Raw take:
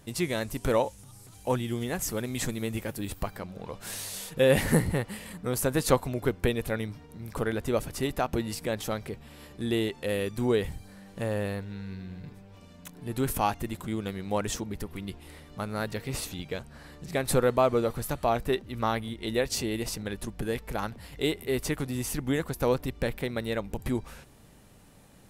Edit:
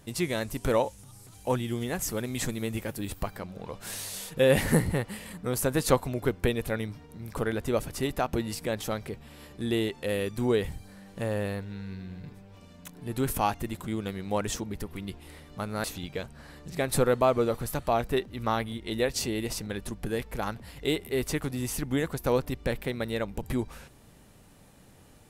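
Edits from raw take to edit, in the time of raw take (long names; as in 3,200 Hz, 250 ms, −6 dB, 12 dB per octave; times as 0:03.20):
0:15.84–0:16.20: remove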